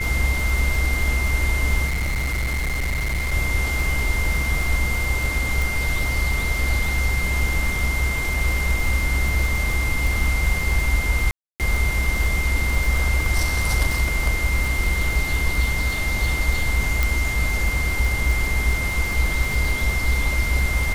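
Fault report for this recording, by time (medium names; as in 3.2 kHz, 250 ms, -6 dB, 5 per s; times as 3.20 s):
crackle 53 per s -24 dBFS
whine 2.1 kHz -25 dBFS
1.86–3.34 s: clipped -20 dBFS
5.62 s: pop
11.31–11.60 s: dropout 288 ms
17.03 s: pop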